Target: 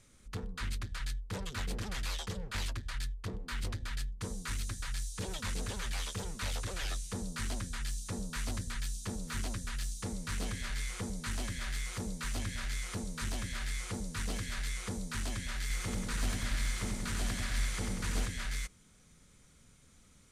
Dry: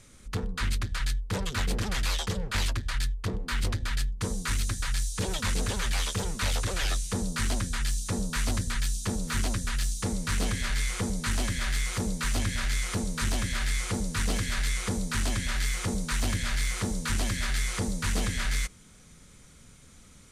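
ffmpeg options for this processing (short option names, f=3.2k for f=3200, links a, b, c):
-filter_complex "[0:a]asettb=1/sr,asplit=3[a][b][c];[a]atrim=end=15.614[d];[b]atrim=start=15.61:end=18.26,asetpts=PTS-STARTPTS,afade=t=in:d=0.004:c=qsin,afade=t=out:st=2.646:d=0.004:c=qsin,aecho=1:1:90|189|297.9|417.7|549.5:0.631|0.398|0.251|0.158|0.1,atrim=end_sample=116865[e];[c]atrim=start=18.256[f];[d][e]acrossfade=d=0.004:c1=hsin:c2=qsin[g];[g][f]acrossfade=d=0.004:c1=qsin:c2=hsin,volume=-8.5dB"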